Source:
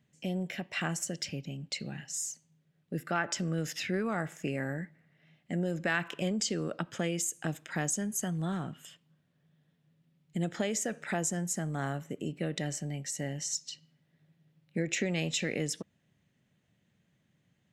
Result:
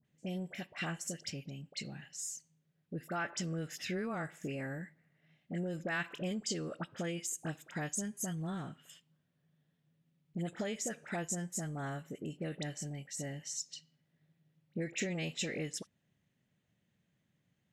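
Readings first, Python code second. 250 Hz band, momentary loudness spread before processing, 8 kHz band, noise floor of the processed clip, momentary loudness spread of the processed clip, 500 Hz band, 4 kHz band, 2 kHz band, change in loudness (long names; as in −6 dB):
−5.5 dB, 9 LU, −5.5 dB, −79 dBFS, 8 LU, −5.5 dB, −5.5 dB, −5.5 dB, −5.5 dB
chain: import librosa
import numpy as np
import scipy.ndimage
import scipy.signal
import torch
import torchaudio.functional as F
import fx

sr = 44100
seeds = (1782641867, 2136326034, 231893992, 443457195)

y = fx.dispersion(x, sr, late='highs', ms=52.0, hz=1500.0)
y = F.gain(torch.from_numpy(y), -5.5).numpy()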